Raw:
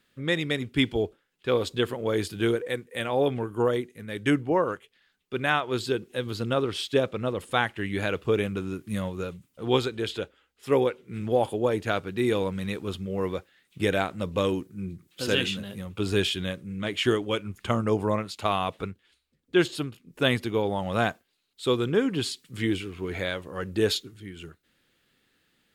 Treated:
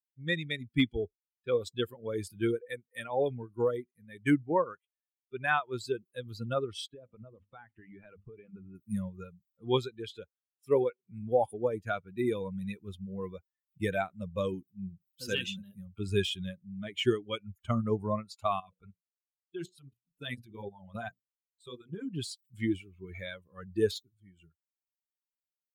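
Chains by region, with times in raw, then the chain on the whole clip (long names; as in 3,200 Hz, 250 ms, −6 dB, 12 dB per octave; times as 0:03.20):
0:06.86–0:08.75: high-frequency loss of the air 320 metres + mains-hum notches 50/100/150/200/250 Hz + downward compressor, threshold −31 dBFS
0:18.60–0:22.14: mains-hum notches 60/120/180/240/300/360/420/480/540/600 Hz + output level in coarse steps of 9 dB + auto-filter notch sine 6.4 Hz 270–2,200 Hz
whole clip: spectral dynamics exaggerated over time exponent 2; de-essing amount 85%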